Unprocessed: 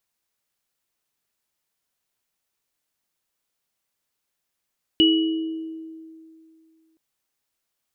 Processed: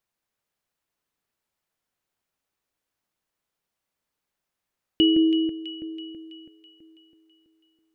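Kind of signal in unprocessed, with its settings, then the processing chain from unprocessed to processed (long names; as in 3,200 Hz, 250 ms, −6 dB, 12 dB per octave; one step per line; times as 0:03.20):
inharmonic partials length 1.97 s, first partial 322 Hz, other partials 422/2,930 Hz, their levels −16.5/0 dB, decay 2.45 s, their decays 1.77/0.82 s, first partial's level −14 dB
high-shelf EQ 3,100 Hz −8 dB
on a send: delay that swaps between a low-pass and a high-pass 164 ms, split 1,800 Hz, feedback 74%, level −6.5 dB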